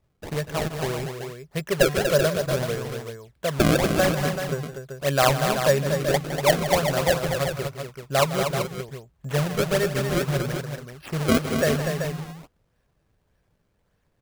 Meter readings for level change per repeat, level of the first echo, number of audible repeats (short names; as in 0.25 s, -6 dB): no steady repeat, -12.5 dB, 3